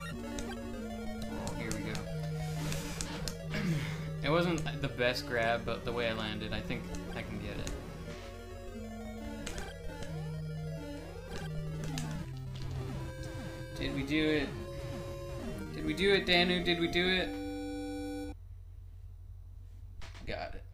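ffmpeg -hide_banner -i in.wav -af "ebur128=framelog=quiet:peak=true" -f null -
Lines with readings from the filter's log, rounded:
Integrated loudness:
  I:         -35.6 LUFS
  Threshold: -46.0 LUFS
Loudness range:
  LRA:        11.2 LU
  Threshold: -55.6 LUFS
  LRA low:   -42.6 LUFS
  LRA high:  -31.4 LUFS
True peak:
  Peak:      -14.6 dBFS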